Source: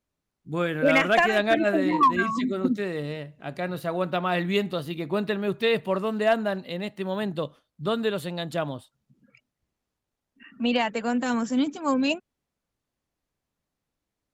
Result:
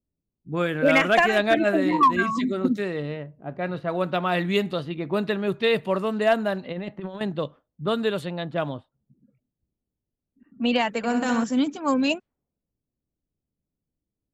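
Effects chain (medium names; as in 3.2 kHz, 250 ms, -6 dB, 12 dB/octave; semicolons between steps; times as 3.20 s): 10.97–11.44 s: flutter echo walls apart 11.1 m, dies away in 0.61 s; level-controlled noise filter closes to 350 Hz, open at -22 dBFS; 6.63–7.21 s: compressor with a negative ratio -33 dBFS, ratio -0.5; trim +1.5 dB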